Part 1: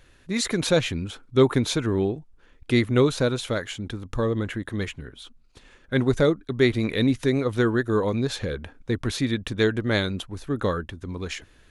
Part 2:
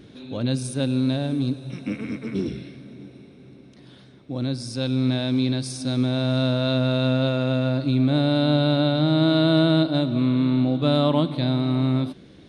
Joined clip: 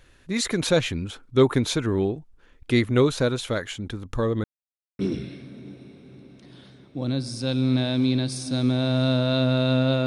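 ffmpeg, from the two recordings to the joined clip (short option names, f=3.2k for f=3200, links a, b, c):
-filter_complex "[0:a]apad=whole_dur=10.06,atrim=end=10.06,asplit=2[a][b];[a]atrim=end=4.44,asetpts=PTS-STARTPTS,afade=t=out:st=4.436:d=0.004:c=hsin[c];[b]atrim=start=4.44:end=4.99,asetpts=PTS-STARTPTS,volume=0[d];[1:a]atrim=start=2.33:end=7.4,asetpts=PTS-STARTPTS,afade=t=in:d=0.004:c=hsin[e];[c][d][e]concat=n=3:v=0:a=1"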